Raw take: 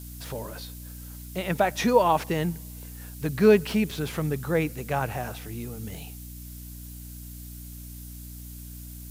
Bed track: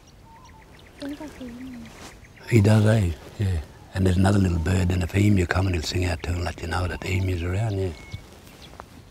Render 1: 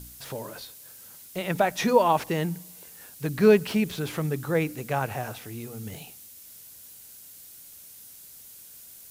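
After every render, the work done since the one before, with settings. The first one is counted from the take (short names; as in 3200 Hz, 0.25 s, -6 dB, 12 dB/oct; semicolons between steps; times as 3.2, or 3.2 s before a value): de-hum 60 Hz, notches 5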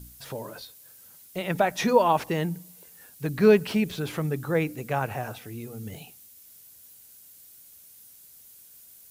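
denoiser 6 dB, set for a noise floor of -48 dBFS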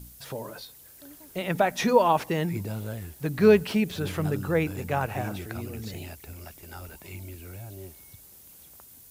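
add bed track -16.5 dB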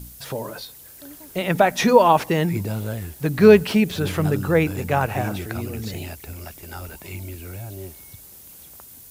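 gain +6.5 dB; limiter -1 dBFS, peak gain reduction 1 dB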